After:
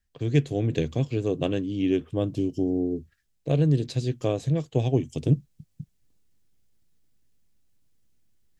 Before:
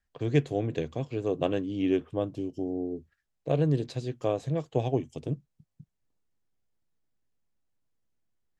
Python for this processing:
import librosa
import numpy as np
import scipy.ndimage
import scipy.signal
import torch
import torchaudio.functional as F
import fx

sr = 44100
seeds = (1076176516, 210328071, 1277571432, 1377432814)

y = fx.rider(x, sr, range_db=10, speed_s=0.5)
y = fx.peak_eq(y, sr, hz=890.0, db=-10.0, octaves=2.4)
y = y * 10.0 ** (7.5 / 20.0)